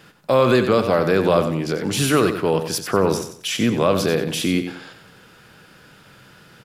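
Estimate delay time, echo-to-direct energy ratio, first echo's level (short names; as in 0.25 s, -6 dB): 93 ms, -8.5 dB, -9.0 dB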